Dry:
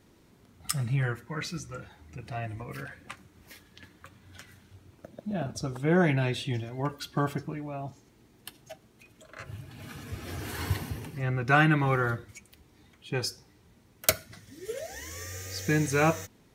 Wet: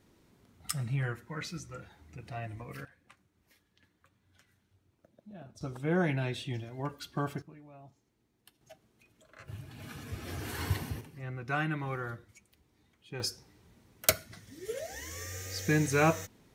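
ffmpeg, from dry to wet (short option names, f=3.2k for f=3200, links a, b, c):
-af "asetnsamples=n=441:p=0,asendcmd='2.85 volume volume -16.5dB;5.61 volume volume -5.5dB;7.42 volume volume -16dB;8.61 volume volume -9dB;9.48 volume volume -2dB;11.01 volume volume -10.5dB;13.2 volume volume -1.5dB',volume=-4.5dB"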